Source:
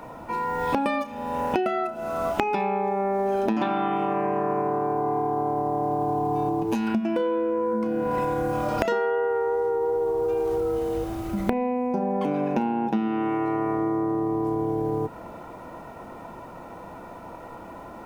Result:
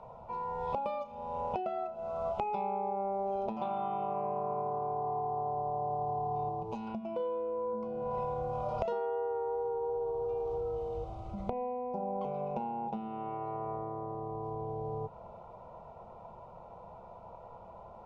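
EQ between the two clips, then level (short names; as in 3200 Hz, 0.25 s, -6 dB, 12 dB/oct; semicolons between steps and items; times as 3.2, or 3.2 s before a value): air absorption 120 m; high shelf 3200 Hz -9 dB; fixed phaser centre 710 Hz, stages 4; -6.0 dB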